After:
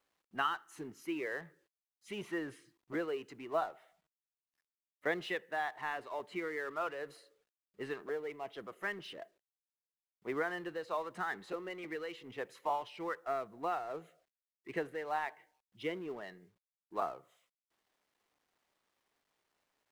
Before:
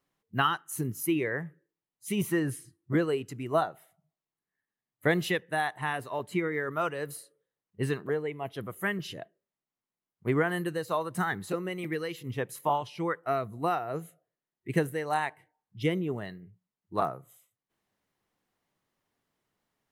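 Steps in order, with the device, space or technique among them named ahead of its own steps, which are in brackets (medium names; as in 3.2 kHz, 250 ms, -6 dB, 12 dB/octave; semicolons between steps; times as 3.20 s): phone line with mismatched companding (band-pass 380–3300 Hz; companding laws mixed up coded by mu); trim -7.5 dB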